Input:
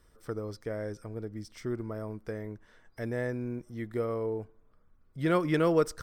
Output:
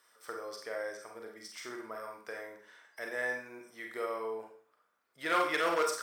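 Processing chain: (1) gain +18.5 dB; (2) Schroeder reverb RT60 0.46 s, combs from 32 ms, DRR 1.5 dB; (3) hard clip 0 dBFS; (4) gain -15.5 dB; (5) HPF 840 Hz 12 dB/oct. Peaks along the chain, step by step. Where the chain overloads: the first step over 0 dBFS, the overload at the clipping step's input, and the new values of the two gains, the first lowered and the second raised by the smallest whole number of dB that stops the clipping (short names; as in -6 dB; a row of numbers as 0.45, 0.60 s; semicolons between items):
+5.0, +7.0, 0.0, -15.5, -17.5 dBFS; step 1, 7.0 dB; step 1 +11.5 dB, step 4 -8.5 dB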